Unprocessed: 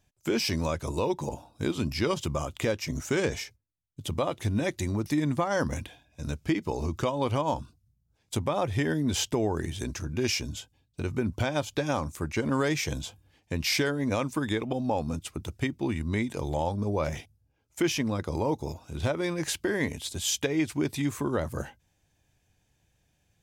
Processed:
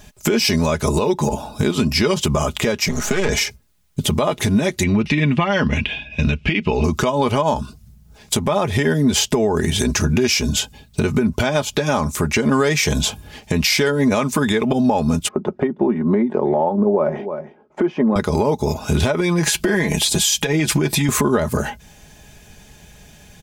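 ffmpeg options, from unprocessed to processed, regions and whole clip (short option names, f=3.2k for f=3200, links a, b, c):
-filter_complex "[0:a]asettb=1/sr,asplit=3[a][b][c];[a]atrim=end=2.884[d];[b]atrim=start=2.88:end=3.29,asetpts=PTS-STARTPTS,afade=t=in:d=0.004:c=qsin,afade=t=out:st=0.406:d=0.004:c=qsin,aeval=exprs='if(lt(val(0),0),0.251*val(0),val(0))':c=same,acrossover=split=110|670[e][f][g];[e]acompressor=threshold=-48dB:ratio=4[h];[f]acompressor=threshold=-43dB:ratio=4[i];[g]acompressor=threshold=-44dB:ratio=4[j];[h][i][j]amix=inputs=3:normalize=0,highshelf=f=7k:g=-9.5[k];[c]atrim=start=3.286[l];[d][k]acrossfade=d=0.004:c1=hsin:c2=qsin[m];[m][l]acrossfade=d=0.004:c1=qsin:c2=hsin,asettb=1/sr,asplit=3[n][o][p];[n]atrim=end=4.834[q];[o]atrim=start=4.83:end=6.84,asetpts=PTS-STARTPTS,afade=t=in:d=0.004:c=qsin,afade=t=out:st=2.006:d=0.004:c=qsin,lowpass=f=2.7k:t=q:w=5.1,equalizer=f=930:w=0.4:g=-7[r];[p]atrim=start=6.836[s];[q][r]acrossfade=d=0.004:c1=hsin:c2=qsin[t];[t][s]acrossfade=d=0.004:c1=qsin:c2=hsin,asettb=1/sr,asplit=3[u][v][w];[u]atrim=end=15.284[x];[v]atrim=start=15.28:end=18.16,asetpts=PTS-STARTPTS,afade=t=in:d=0.004:c=qsin,afade=t=out:st=2.876:d=0.004:c=qsin,asuperpass=centerf=490:order=4:qfactor=0.63,aecho=1:1:5.4:0.36,atrim=end_sample=127008,aecho=1:1:315:0.075,atrim=end_sample=127008[y];[w]atrim=start=18.156[z];[x][y]acrossfade=d=0.004:c1=hsin:c2=qsin[aa];[aa][z]acrossfade=d=0.004:c1=qsin:c2=hsin,asettb=1/sr,asplit=3[ab][ac][ad];[ab]atrim=end=19.204[ae];[ac]atrim=start=19.2:end=21.09,asetpts=PTS-STARTPTS,afade=t=in:d=0.004:c=qsin,afade=t=out:st=1.886:d=0.004:c=qsin,acompressor=threshold=-33dB:ratio=6:attack=3.2:release=140:knee=1:detection=peak,aecho=1:1:6:0.57,atrim=end_sample=83349[af];[ad]atrim=start=21.086[ag];[ae][af]acrossfade=d=0.004:c1=hsin:c2=qsin[ah];[ah][ag]acrossfade=d=0.004:c1=qsin:c2=hsin,aecho=1:1:4.8:0.58,acompressor=threshold=-39dB:ratio=10,alimiter=level_in=31.5dB:limit=-1dB:release=50:level=0:latency=1,volume=-6dB"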